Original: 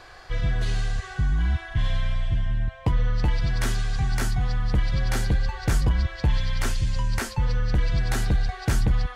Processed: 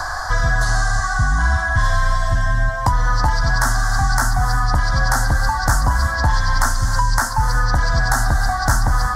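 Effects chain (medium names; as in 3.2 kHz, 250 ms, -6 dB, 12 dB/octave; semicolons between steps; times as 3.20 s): FFT filter 100 Hz 0 dB, 190 Hz -7 dB, 270 Hz +2 dB, 410 Hz -14 dB, 610 Hz +6 dB, 940 Hz +14 dB, 1.7 kHz +10 dB, 2.5 kHz -21 dB, 5.2 kHz +9 dB; gated-style reverb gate 370 ms flat, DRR 10.5 dB; three bands compressed up and down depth 70%; trim +4.5 dB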